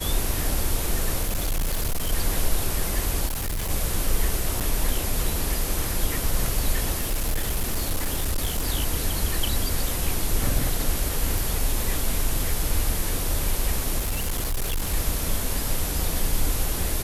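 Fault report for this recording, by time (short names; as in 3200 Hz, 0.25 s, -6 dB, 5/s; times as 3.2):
1.22–2.13 clipped -20.5 dBFS
3.26–3.71 clipped -24 dBFS
4.6–4.61 gap 7.8 ms
7–8.69 clipped -20 dBFS
11.38 pop
13.98–14.94 clipped -21.5 dBFS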